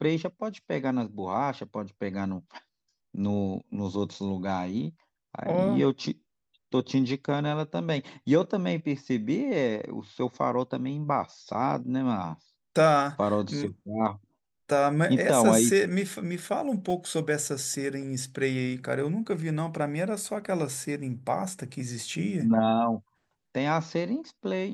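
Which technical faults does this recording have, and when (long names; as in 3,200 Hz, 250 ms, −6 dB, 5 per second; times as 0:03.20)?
0:16.90: drop-out 2.7 ms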